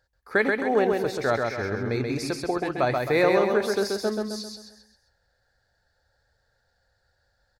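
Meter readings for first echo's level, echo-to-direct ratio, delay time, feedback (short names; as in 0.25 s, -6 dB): -3.5 dB, -2.5 dB, 0.132 s, 43%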